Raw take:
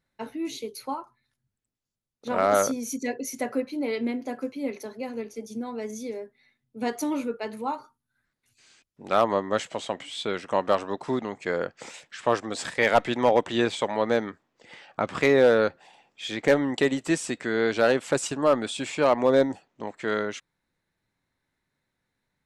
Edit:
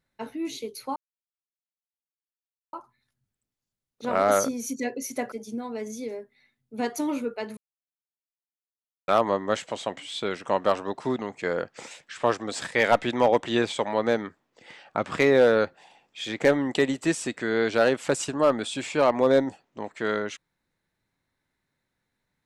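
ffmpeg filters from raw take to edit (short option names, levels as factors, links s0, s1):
-filter_complex "[0:a]asplit=5[s0][s1][s2][s3][s4];[s0]atrim=end=0.96,asetpts=PTS-STARTPTS,afade=t=out:st=0.956:d=0.004:c=hsin,apad=pad_dur=1.77[s5];[s1]atrim=start=0.96:end=3.552,asetpts=PTS-STARTPTS,afade=t=in:d=0.004:c=hsin[s6];[s2]atrim=start=5.348:end=7.6,asetpts=PTS-STARTPTS,afade=t=out:st=2.248:d=0.004:c=hsin[s7];[s3]atrim=start=7.6:end=9.11,asetpts=PTS-STARTPTS,volume=0[s8];[s4]atrim=start=9.11,asetpts=PTS-STARTPTS,afade=t=in:d=0.004:c=hsin[s9];[s5][s6]concat=n=2:v=0:a=1[s10];[s7][s8][s9]concat=n=3:v=0:a=1[s11];[s10][s11]acrossfade=d=0.004:c1=hsin:c2=hsin"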